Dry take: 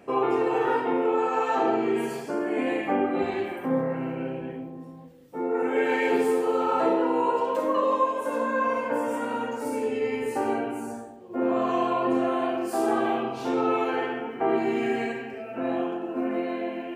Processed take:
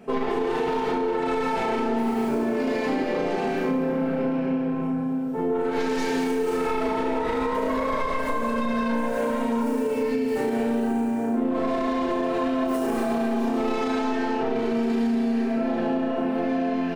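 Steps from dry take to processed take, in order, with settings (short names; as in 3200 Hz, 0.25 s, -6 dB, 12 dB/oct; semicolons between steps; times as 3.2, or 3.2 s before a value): tracing distortion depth 0.26 ms; comb 4.6 ms, depth 60%; flutter echo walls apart 5.9 m, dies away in 0.39 s; reverb RT60 2.9 s, pre-delay 98 ms, DRR -1.5 dB; limiter -11.5 dBFS, peak gain reduction 7 dB; low shelf 460 Hz +4 dB; compressor, threshold -22 dBFS, peak gain reduction 9 dB; bell 150 Hz +4 dB 0.75 oct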